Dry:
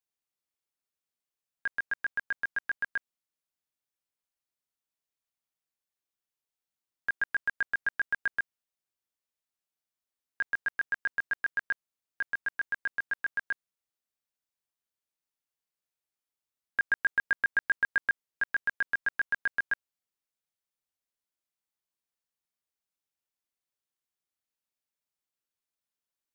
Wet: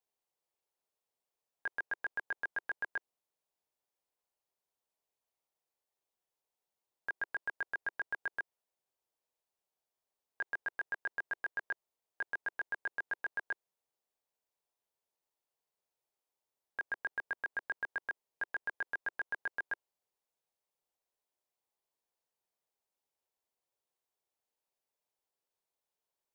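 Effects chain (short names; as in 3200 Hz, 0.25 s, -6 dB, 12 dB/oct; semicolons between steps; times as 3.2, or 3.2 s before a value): limiter -28 dBFS, peak gain reduction 9 dB; band shelf 610 Hz +9.5 dB; gain -2 dB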